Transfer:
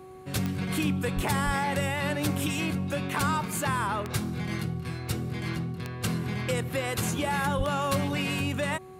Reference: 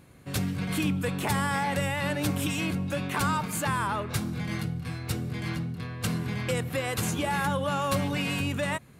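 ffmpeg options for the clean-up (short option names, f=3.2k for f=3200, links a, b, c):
-filter_complex "[0:a]adeclick=t=4,bandreject=f=374.8:t=h:w=4,bandreject=f=749.6:t=h:w=4,bandreject=f=1.1244k:t=h:w=4,asplit=3[a][b][c];[a]afade=t=out:st=1.15:d=0.02[d];[b]highpass=f=140:w=0.5412,highpass=f=140:w=1.3066,afade=t=in:st=1.15:d=0.02,afade=t=out:st=1.27:d=0.02[e];[c]afade=t=in:st=1.27:d=0.02[f];[d][e][f]amix=inputs=3:normalize=0,asplit=3[g][h][i];[g]afade=t=out:st=1.45:d=0.02[j];[h]highpass=f=140:w=0.5412,highpass=f=140:w=1.3066,afade=t=in:st=1.45:d=0.02,afade=t=out:st=1.57:d=0.02[k];[i]afade=t=in:st=1.57:d=0.02[l];[j][k][l]amix=inputs=3:normalize=0,asplit=3[m][n][o];[m]afade=t=out:st=7.57:d=0.02[p];[n]highpass=f=140:w=0.5412,highpass=f=140:w=1.3066,afade=t=in:st=7.57:d=0.02,afade=t=out:st=7.69:d=0.02[q];[o]afade=t=in:st=7.69:d=0.02[r];[p][q][r]amix=inputs=3:normalize=0"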